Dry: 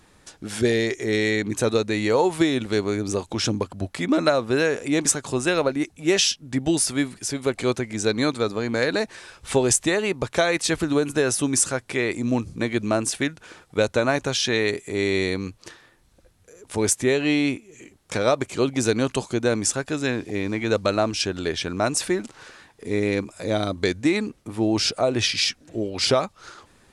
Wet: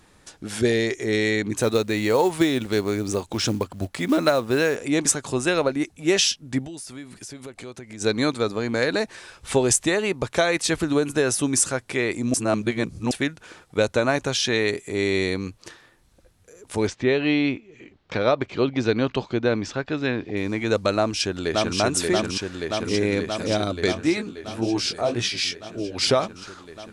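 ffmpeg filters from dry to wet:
ffmpeg -i in.wav -filter_complex "[0:a]asettb=1/sr,asplit=3[link_01][link_02][link_03];[link_01]atrim=end=1.584[link_04];[link_02]atrim=start=1.58:end=4.76,asetpts=PTS-STARTPTS,afade=type=in:duration=0.004:curve=qsin,afade=type=out:start_time=3.176:duration=0.004:curve=qsin,acrusher=bits=6:mode=log:mix=0:aa=0.000001[link_05];[link_03]atrim=start=4.756[link_06];[link_04][link_05]acrossfade=duration=0.004:curve1=hsin:curve2=qsin[link_07];[link_07][link_06]acrossfade=duration=0.004:curve1=qsin:curve2=hsin,asplit=3[link_08][link_09][link_10];[link_08]afade=type=out:start_time=6.65:duration=0.02[link_11];[link_09]acompressor=threshold=-36dB:ratio=5:attack=3.2:release=140:knee=1:detection=peak,afade=type=in:start_time=6.65:duration=0.02,afade=type=out:start_time=8:duration=0.02[link_12];[link_10]afade=type=in:start_time=8:duration=0.02[link_13];[link_11][link_12][link_13]amix=inputs=3:normalize=0,asettb=1/sr,asplit=3[link_14][link_15][link_16];[link_14]atrim=end=16.874[link_17];[link_15]atrim=start=16.87:end=20.37,asetpts=PTS-STARTPTS,afade=type=in:duration=0.004:curve=qsin,afade=type=out:start_time=3.496:duration=0.004:curve=qsin,lowpass=frequency=4300:width=0.5412,lowpass=frequency=4300:width=1.3066[link_18];[link_16]atrim=start=20.366[link_19];[link_17][link_18]acrossfade=duration=0.004:curve1=hsin:curve2=qsin[link_20];[link_20][link_19]acrossfade=duration=0.004:curve1=qsin:curve2=hsin,asplit=2[link_21][link_22];[link_22]afade=type=in:start_time=20.96:duration=0.01,afade=type=out:start_time=21.79:duration=0.01,aecho=0:1:580|1160|1740|2320|2900|3480|4060|4640|5220|5800|6380|6960:0.794328|0.635463|0.50837|0.406696|0.325357|0.260285|0.208228|0.166583|0.133266|0.106613|0.0852903|0.0682323[link_23];[link_21][link_23]amix=inputs=2:normalize=0,asplit=3[link_24][link_25][link_26];[link_24]afade=type=out:start_time=23.95:duration=0.02[link_27];[link_25]flanger=delay=15.5:depth=7.3:speed=1.9,afade=type=in:start_time=23.95:duration=0.02,afade=type=out:start_time=25.95:duration=0.02[link_28];[link_26]afade=type=in:start_time=25.95:duration=0.02[link_29];[link_27][link_28][link_29]amix=inputs=3:normalize=0,asplit=3[link_30][link_31][link_32];[link_30]atrim=end=12.342[link_33];[link_31]atrim=start=12.338:end=13.112,asetpts=PTS-STARTPTS,areverse[link_34];[link_32]atrim=start=13.108[link_35];[link_33][link_34]acrossfade=duration=0.004:curve1=hsin:curve2=hsin[link_36];[link_36][link_35]acrossfade=duration=0.004:curve1=hsin:curve2=hsin" out.wav

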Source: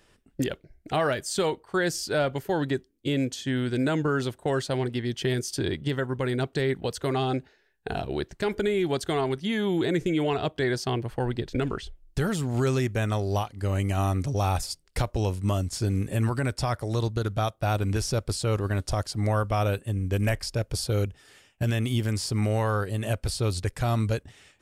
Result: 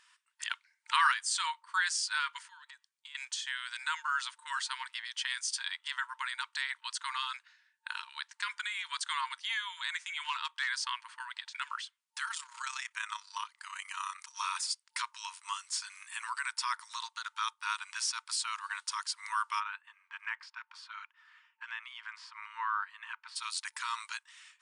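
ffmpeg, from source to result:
ffmpeg -i in.wav -filter_complex "[0:a]asettb=1/sr,asplit=3[link_01][link_02][link_03];[link_01]atrim=end=0.504[link_04];[link_02]atrim=start=0.5:end=1.12,asetpts=PTS-STARTPTS,afade=type=in:duration=0.004:curve=qsin,afade=type=out:start_time=0.616:duration=0.004:curve=qsin,acontrast=35[link_05];[link_03]atrim=start=1.116[link_06];[link_04][link_05]acrossfade=duration=0.004:curve1=hsin:curve2=qsin[link_07];[link_07][link_06]acrossfade=duration=0.004:curve1=qsin:curve2=hsin,asettb=1/sr,asplit=3[link_08][link_09][link_10];[link_08]atrim=end=2.454[link_11];[link_09]atrim=start=2.45:end=3.15,asetpts=PTS-STARTPTS,afade=type=in:duration=0.004:curve=qsin,afade=type=out:start_time=0.696:duration=0.004:curve=qsin,acompressor=threshold=-37dB:ratio=16:attack=3.2:release=140:knee=1:detection=peak[link_12];[link_10]atrim=start=3.146[link_13];[link_11][link_12]acrossfade=duration=0.004:curve1=hsin:curve2=qsin[link_14];[link_14][link_13]acrossfade=duration=0.004:curve1=qsin:curve2=hsin,asettb=1/sr,asplit=3[link_15][link_16][link_17];[link_15]atrim=end=10.234[link_18];[link_16]atrim=start=10.23:end=10.7,asetpts=PTS-STARTPTS,afade=type=in:duration=0.004:curve=qsin,afade=type=out:start_time=0.466:duration=0.004:curve=qsin,asoftclip=type=hard:threshold=-19dB[link_19];[link_17]atrim=start=10.696[link_20];[link_18][link_19]acrossfade=duration=0.004:curve1=hsin:curve2=qsin[link_21];[link_21][link_20]acrossfade=duration=0.004:curve1=qsin:curve2=hsin,asettb=1/sr,asplit=3[link_22][link_23][link_24];[link_22]atrim=end=12.254[link_25];[link_23]atrim=start=12.25:end=14.35,asetpts=PTS-STARTPTS,afade=type=in:duration=0.004:curve=qsin,afade=type=out:start_time=2.096:duration=0.004:curve=qsin,tremolo=f=33:d=0.621[link_26];[link_24]atrim=start=14.346[link_27];[link_25][link_26]acrossfade=duration=0.004:curve1=hsin:curve2=qsin[link_28];[link_28][link_27]acrossfade=duration=0.004:curve1=qsin:curve2=hsin,asplit=3[link_29][link_30][link_31];[link_29]afade=type=out:start_time=19.59:duration=0.02[link_32];[link_30]lowpass=1800,afade=type=in:start_time=19.59:duration=0.02,afade=type=out:start_time=23.35:duration=0.02[link_33];[link_31]afade=type=in:start_time=23.35:duration=0.02[link_34];[link_32][link_33][link_34]amix=inputs=3:normalize=0,afftfilt=real='re*between(b*sr/4096,900,10000)':imag='im*between(b*sr/4096,900,10000)':win_size=4096:overlap=0.75" out.wav

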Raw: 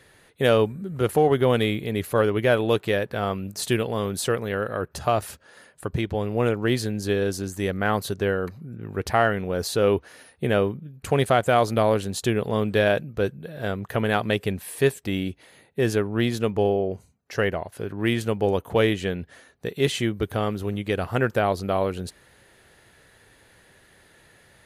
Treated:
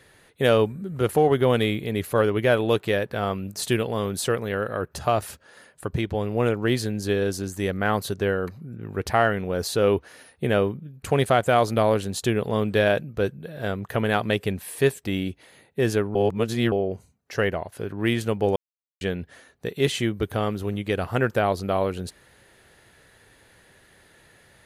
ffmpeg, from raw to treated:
ffmpeg -i in.wav -filter_complex "[0:a]asplit=5[link_01][link_02][link_03][link_04][link_05];[link_01]atrim=end=16.152[link_06];[link_02]atrim=start=16.148:end=16.722,asetpts=PTS-STARTPTS,areverse[link_07];[link_03]atrim=start=16.718:end=18.56,asetpts=PTS-STARTPTS,afade=type=out:start_time=1.838:duration=0.004:curve=hsin[link_08];[link_04]atrim=start=18.56:end=19.01,asetpts=PTS-STARTPTS,volume=0[link_09];[link_05]atrim=start=19.01,asetpts=PTS-STARTPTS,afade=type=in:duration=0.004:curve=hsin[link_10];[link_06][link_07]acrossfade=duration=0.004:curve1=hsin:curve2=hsin[link_11];[link_08][link_09][link_10]concat=n=3:v=0:a=1[link_12];[link_11][link_12]acrossfade=duration=0.004:curve1=hsin:curve2=hsin" out.wav

